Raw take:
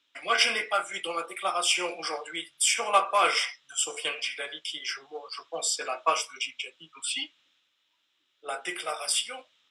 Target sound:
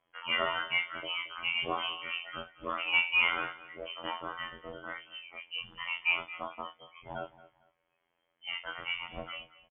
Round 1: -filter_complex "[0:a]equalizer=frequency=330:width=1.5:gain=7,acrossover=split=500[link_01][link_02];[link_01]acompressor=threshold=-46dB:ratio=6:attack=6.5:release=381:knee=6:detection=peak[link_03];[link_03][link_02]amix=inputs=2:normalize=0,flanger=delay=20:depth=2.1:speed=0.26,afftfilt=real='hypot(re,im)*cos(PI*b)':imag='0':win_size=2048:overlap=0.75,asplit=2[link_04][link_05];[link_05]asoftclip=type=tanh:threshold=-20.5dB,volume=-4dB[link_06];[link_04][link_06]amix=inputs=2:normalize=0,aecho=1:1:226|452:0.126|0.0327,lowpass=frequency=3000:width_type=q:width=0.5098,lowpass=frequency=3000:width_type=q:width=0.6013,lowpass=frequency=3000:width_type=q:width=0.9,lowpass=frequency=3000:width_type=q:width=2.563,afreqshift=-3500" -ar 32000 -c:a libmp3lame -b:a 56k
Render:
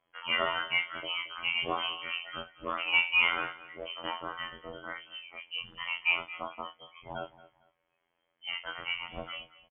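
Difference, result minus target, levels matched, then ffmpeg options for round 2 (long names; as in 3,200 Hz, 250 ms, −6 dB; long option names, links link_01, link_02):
downward compressor: peak gain reduction −7 dB; soft clipping: distortion −6 dB
-filter_complex "[0:a]equalizer=frequency=330:width=1.5:gain=7,acrossover=split=500[link_01][link_02];[link_01]acompressor=threshold=-54.5dB:ratio=6:attack=6.5:release=381:knee=6:detection=peak[link_03];[link_03][link_02]amix=inputs=2:normalize=0,flanger=delay=20:depth=2.1:speed=0.26,afftfilt=real='hypot(re,im)*cos(PI*b)':imag='0':win_size=2048:overlap=0.75,asplit=2[link_04][link_05];[link_05]asoftclip=type=tanh:threshold=-29.5dB,volume=-4dB[link_06];[link_04][link_06]amix=inputs=2:normalize=0,aecho=1:1:226|452:0.126|0.0327,lowpass=frequency=3000:width_type=q:width=0.5098,lowpass=frequency=3000:width_type=q:width=0.6013,lowpass=frequency=3000:width_type=q:width=0.9,lowpass=frequency=3000:width_type=q:width=2.563,afreqshift=-3500" -ar 32000 -c:a libmp3lame -b:a 56k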